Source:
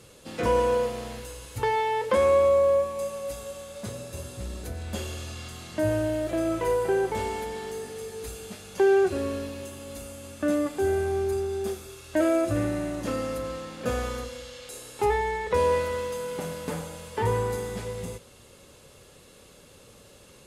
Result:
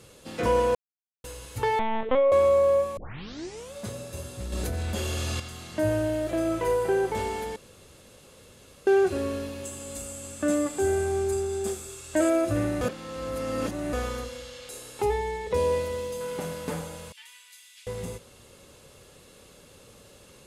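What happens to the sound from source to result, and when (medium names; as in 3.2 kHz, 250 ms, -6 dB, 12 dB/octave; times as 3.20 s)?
0.75–1.24 s: mute
1.79–2.32 s: LPC vocoder at 8 kHz pitch kept
2.97 s: tape start 0.76 s
4.52–5.40 s: level flattener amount 100%
7.56–8.87 s: room tone
9.64–12.30 s: peaking EQ 7.8 kHz +14 dB 0.36 oct
12.81–13.93 s: reverse
15.02–16.21 s: peaking EQ 1.4 kHz -9.5 dB 1.3 oct
17.12–17.87 s: ladder high-pass 2.3 kHz, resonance 40%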